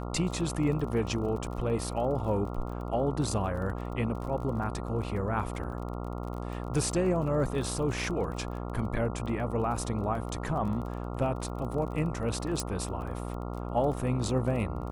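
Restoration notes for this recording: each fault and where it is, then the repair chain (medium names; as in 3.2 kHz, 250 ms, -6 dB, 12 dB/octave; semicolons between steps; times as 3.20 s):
buzz 60 Hz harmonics 23 -36 dBFS
crackle 28 per s -38 dBFS
12.60 s: pop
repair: de-click; de-hum 60 Hz, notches 23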